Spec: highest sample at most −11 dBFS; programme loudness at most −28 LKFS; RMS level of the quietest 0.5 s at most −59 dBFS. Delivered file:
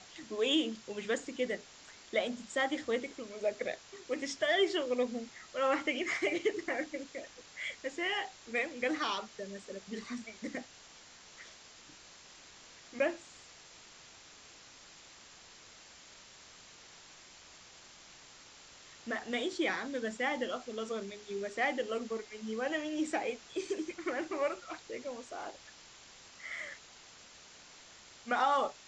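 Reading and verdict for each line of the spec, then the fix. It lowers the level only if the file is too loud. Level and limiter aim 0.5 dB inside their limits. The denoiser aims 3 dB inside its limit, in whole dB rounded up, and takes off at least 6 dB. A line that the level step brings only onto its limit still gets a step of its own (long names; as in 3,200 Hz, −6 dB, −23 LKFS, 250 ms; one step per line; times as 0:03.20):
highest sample −17.5 dBFS: in spec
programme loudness −35.5 LKFS: in spec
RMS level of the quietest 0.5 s −56 dBFS: out of spec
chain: broadband denoise 6 dB, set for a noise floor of −56 dBFS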